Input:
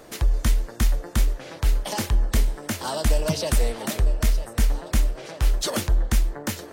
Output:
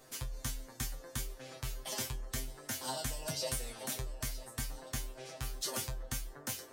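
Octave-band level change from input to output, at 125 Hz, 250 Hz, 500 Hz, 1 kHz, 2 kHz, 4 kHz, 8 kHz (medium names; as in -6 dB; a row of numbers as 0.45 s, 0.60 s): -18.0 dB, -17.0 dB, -14.0 dB, -12.5 dB, -11.5 dB, -9.0 dB, -7.0 dB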